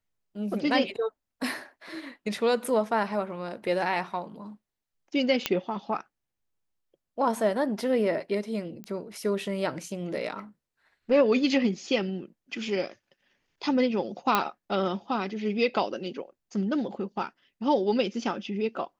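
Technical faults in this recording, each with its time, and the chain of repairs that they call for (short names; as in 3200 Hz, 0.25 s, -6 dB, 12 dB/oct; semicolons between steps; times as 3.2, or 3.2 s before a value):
5.46 pop -8 dBFS
8.84 pop -25 dBFS
14.35 pop -8 dBFS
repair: de-click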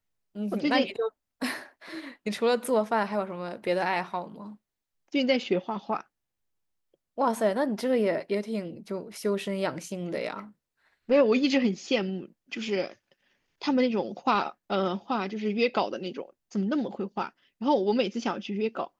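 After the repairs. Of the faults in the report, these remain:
none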